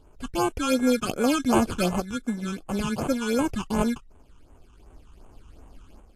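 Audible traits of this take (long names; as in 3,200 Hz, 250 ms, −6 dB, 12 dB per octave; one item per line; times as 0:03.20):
aliases and images of a low sample rate 1,900 Hz, jitter 0%
tremolo saw up 0.5 Hz, depth 55%
phaser sweep stages 8, 2.7 Hz, lowest notch 570–4,900 Hz
Ogg Vorbis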